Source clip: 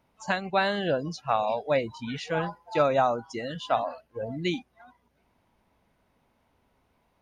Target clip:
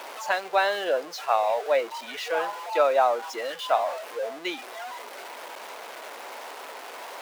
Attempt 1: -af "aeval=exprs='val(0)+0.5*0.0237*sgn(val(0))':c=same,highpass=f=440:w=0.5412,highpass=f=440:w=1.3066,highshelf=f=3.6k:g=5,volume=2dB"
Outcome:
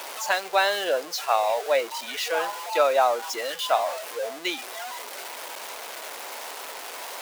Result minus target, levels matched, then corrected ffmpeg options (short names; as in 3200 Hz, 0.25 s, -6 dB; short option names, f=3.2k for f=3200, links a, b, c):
8000 Hz band +9.0 dB
-af "aeval=exprs='val(0)+0.5*0.0237*sgn(val(0))':c=same,highpass=f=440:w=0.5412,highpass=f=440:w=1.3066,highshelf=f=3.6k:g=-6,volume=2dB"